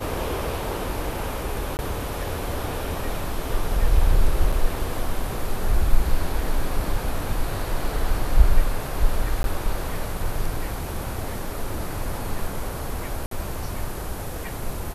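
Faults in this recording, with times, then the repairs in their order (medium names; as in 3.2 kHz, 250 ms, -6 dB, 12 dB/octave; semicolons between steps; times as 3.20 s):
1.77–1.79 s: dropout 19 ms
4.52 s: dropout 4.9 ms
9.43–9.44 s: dropout 12 ms
13.26–13.31 s: dropout 53 ms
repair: interpolate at 1.77 s, 19 ms; interpolate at 4.52 s, 4.9 ms; interpolate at 9.43 s, 12 ms; interpolate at 13.26 s, 53 ms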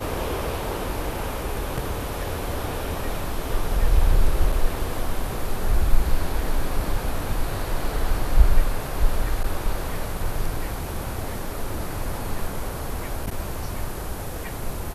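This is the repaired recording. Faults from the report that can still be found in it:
nothing left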